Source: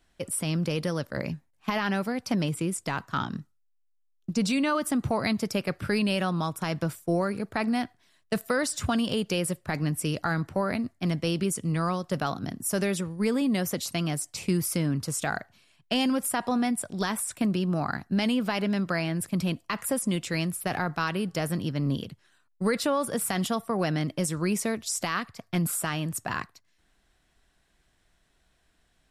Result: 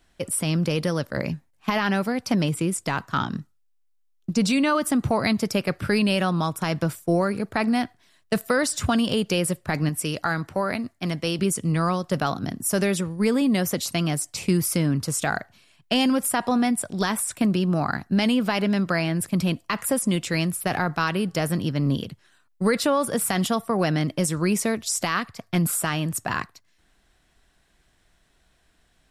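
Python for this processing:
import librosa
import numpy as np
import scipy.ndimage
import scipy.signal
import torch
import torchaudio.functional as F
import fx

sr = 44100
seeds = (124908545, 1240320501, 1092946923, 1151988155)

y = fx.low_shelf(x, sr, hz=380.0, db=-6.0, at=(9.89, 11.39))
y = y * librosa.db_to_amplitude(4.5)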